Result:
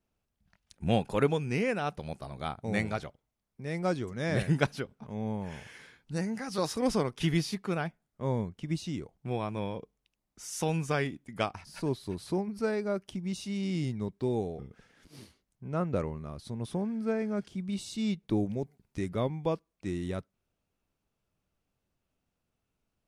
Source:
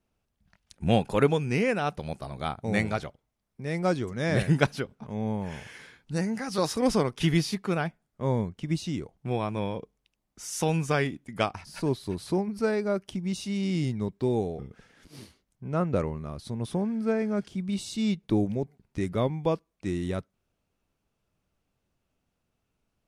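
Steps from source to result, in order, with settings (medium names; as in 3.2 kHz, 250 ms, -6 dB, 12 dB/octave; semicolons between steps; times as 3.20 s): 18.57–19.01 s: treble shelf 4.1 kHz +6 dB; trim -4 dB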